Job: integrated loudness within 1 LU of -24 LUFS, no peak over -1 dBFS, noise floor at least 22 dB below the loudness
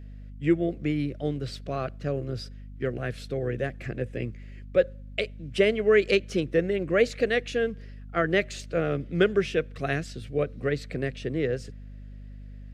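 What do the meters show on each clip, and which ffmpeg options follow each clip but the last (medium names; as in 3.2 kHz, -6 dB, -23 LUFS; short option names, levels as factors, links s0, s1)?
hum 50 Hz; highest harmonic 250 Hz; hum level -39 dBFS; loudness -27.5 LUFS; peak level -9.0 dBFS; loudness target -24.0 LUFS
-> -af "bandreject=f=50:t=h:w=4,bandreject=f=100:t=h:w=4,bandreject=f=150:t=h:w=4,bandreject=f=200:t=h:w=4,bandreject=f=250:t=h:w=4"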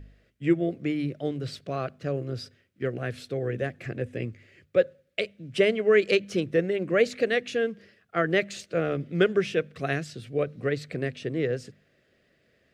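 hum not found; loudness -28.0 LUFS; peak level -9.0 dBFS; loudness target -24.0 LUFS
-> -af "volume=1.58"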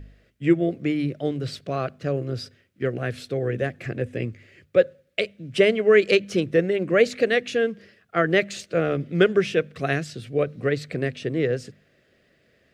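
loudness -24.0 LUFS; peak level -5.0 dBFS; noise floor -64 dBFS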